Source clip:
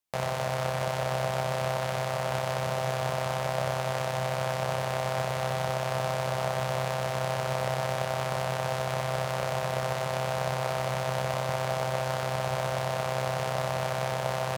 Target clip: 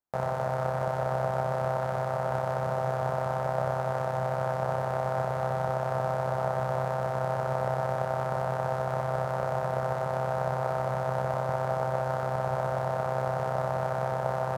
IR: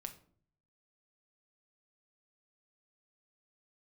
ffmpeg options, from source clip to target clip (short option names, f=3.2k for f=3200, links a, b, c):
-af "highshelf=f=1.8k:t=q:w=1.5:g=-12,bandreject=f=1.1k:w=7.9"